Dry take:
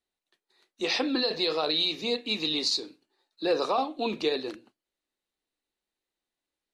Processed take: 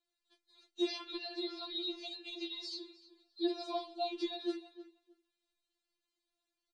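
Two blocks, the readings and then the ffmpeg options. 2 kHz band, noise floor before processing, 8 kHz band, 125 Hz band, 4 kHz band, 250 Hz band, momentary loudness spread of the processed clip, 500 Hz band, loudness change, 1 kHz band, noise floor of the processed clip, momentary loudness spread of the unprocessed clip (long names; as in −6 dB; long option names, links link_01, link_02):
−15.5 dB, below −85 dBFS, −17.5 dB, below −35 dB, −12.5 dB, −7.0 dB, 17 LU, −11.5 dB, −11.5 dB, −11.5 dB, below −85 dBFS, 8 LU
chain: -filter_complex "[0:a]equalizer=frequency=4100:width=2:gain=5.5,alimiter=limit=-21dB:level=0:latency=1:release=376,aresample=22050,aresample=44100,acrossover=split=820|1900[link_01][link_02][link_03];[link_01]acompressor=threshold=-33dB:ratio=4[link_04];[link_02]acompressor=threshold=-54dB:ratio=4[link_05];[link_03]acompressor=threshold=-41dB:ratio=4[link_06];[link_04][link_05][link_06]amix=inputs=3:normalize=0,asplit=2[link_07][link_08];[link_08]adelay=310,lowpass=frequency=3100:poles=1,volume=-15dB,asplit=2[link_09][link_10];[link_10]adelay=310,lowpass=frequency=3100:poles=1,volume=0.18[link_11];[link_07][link_09][link_11]amix=inputs=3:normalize=0,afftfilt=real='re*4*eq(mod(b,16),0)':imag='im*4*eq(mod(b,16),0)':win_size=2048:overlap=0.75"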